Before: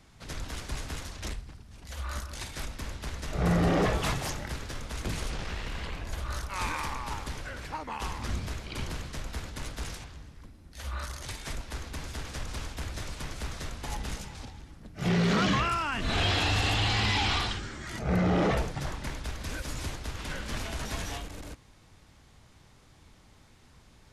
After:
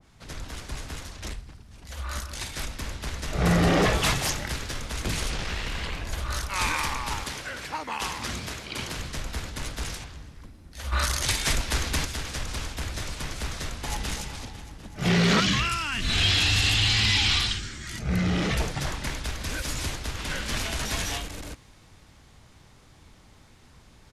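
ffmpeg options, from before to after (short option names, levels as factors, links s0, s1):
-filter_complex "[0:a]asettb=1/sr,asplit=3[s0][s1][s2];[s0]atrim=end=7.244[s3];[s1]atrim=start=7.24:end=8.97,asetpts=PTS-STARTPTS,afade=t=in:d=0.004:c=qsin,afade=t=out:st=1.726:d=0.004:c=qsin,highpass=f=170:p=1[s4];[s2]atrim=start=8.966[s5];[s3][s4]acrossfade=d=0.004:c1=hsin:c2=qsin[s6];[s6][s5]acrossfade=d=0.004:c1=qsin:c2=hsin,asettb=1/sr,asplit=3[s7][s8][s9];[s7]atrim=end=10.924[s10];[s8]atrim=start=10.92:end=12.05,asetpts=PTS-STARTPTS,afade=t=in:d=0.004:c=qsin,afade=t=out:st=1.126:d=0.004:c=qsin,acontrast=61[s11];[s9]atrim=start=12.046[s12];[s10][s11]acrossfade=d=0.004:c1=hsin:c2=qsin[s13];[s13][s12]acrossfade=d=0.004:c1=qsin:c2=hsin,asplit=2[s14][s15];[s15]afade=t=in:st=13.7:d=0.01,afade=t=out:st=14.11:d=0.01,aecho=0:1:250|500|750|1000|1250|1500|1750|2000|2250|2500|2750|3000:0.281838|0.211379|0.158534|0.118901|0.0891754|0.0668815|0.0501612|0.0376209|0.0282157|0.0211617|0.0158713|0.0119035[s16];[s14][s16]amix=inputs=2:normalize=0,asettb=1/sr,asplit=3[s17][s18][s19];[s17]atrim=end=15.404[s20];[s18]atrim=start=15.4:end=18.6,asetpts=PTS-STARTPTS,afade=t=in:d=0.004:c=qsin,afade=t=out:st=3.196:d=0.004:c=qsin,equalizer=f=680:w=0.55:g=-11[s21];[s19]atrim=start=18.596[s22];[s20][s21]acrossfade=d=0.004:c1=hsin:c2=qsin[s23];[s23][s22]acrossfade=d=0.004:c1=qsin:c2=hsin,dynaudnorm=f=200:g=21:m=1.5,adynamicequalizer=threshold=0.00891:dfrequency=1600:dqfactor=0.7:tfrequency=1600:tqfactor=0.7:attack=5:release=100:ratio=0.375:range=3:mode=boostabove:tftype=highshelf"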